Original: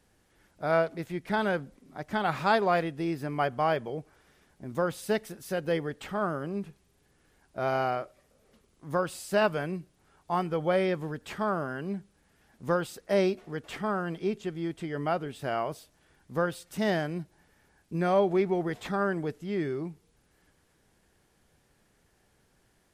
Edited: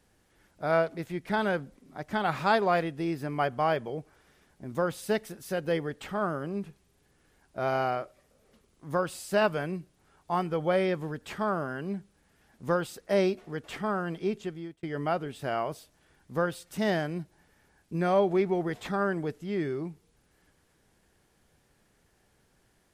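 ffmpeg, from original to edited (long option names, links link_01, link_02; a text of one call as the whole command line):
ffmpeg -i in.wav -filter_complex "[0:a]asplit=2[link_01][link_02];[link_01]atrim=end=14.83,asetpts=PTS-STARTPTS,afade=type=out:start_time=14.42:duration=0.41[link_03];[link_02]atrim=start=14.83,asetpts=PTS-STARTPTS,afade=type=in:duration=0.004:curve=hsin[link_04];[link_03][link_04]concat=n=2:v=0:a=1" out.wav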